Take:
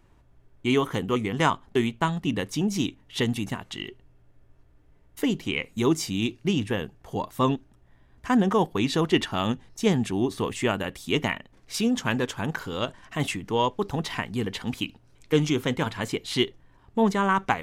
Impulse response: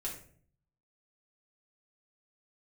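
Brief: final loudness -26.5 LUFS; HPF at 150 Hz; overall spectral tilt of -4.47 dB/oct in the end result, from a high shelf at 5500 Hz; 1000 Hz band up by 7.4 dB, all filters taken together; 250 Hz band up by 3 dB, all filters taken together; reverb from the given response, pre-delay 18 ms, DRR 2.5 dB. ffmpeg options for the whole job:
-filter_complex "[0:a]highpass=150,equalizer=f=250:t=o:g=4,equalizer=f=1k:t=o:g=8.5,highshelf=f=5.5k:g=-4.5,asplit=2[a][b];[1:a]atrim=start_sample=2205,adelay=18[c];[b][c]afir=irnorm=-1:irlink=0,volume=-3dB[d];[a][d]amix=inputs=2:normalize=0,volume=-5dB"

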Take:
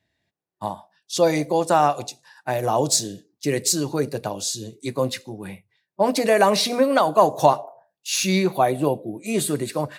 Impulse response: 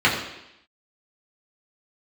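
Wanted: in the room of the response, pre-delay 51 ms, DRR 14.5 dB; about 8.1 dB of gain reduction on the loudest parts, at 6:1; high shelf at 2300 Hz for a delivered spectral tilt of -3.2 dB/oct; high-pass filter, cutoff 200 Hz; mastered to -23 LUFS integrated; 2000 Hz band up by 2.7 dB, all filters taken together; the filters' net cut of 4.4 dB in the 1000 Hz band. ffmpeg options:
-filter_complex "[0:a]highpass=200,equalizer=f=1k:t=o:g=-7,equalizer=f=2k:t=o:g=8,highshelf=f=2.3k:g=-4.5,acompressor=threshold=-23dB:ratio=6,asplit=2[a][b];[1:a]atrim=start_sample=2205,adelay=51[c];[b][c]afir=irnorm=-1:irlink=0,volume=-35dB[d];[a][d]amix=inputs=2:normalize=0,volume=6dB"

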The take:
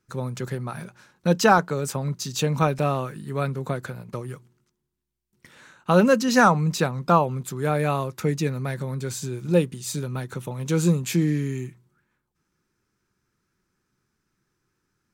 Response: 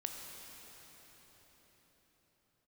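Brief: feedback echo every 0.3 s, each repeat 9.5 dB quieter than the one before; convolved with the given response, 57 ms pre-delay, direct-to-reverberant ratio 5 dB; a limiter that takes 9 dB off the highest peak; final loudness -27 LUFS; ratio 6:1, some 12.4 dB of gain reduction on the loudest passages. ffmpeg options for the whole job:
-filter_complex "[0:a]acompressor=threshold=-26dB:ratio=6,alimiter=limit=-21.5dB:level=0:latency=1,aecho=1:1:300|600|900|1200:0.335|0.111|0.0365|0.012,asplit=2[a][b];[1:a]atrim=start_sample=2205,adelay=57[c];[b][c]afir=irnorm=-1:irlink=0,volume=-5dB[d];[a][d]amix=inputs=2:normalize=0,volume=4dB"

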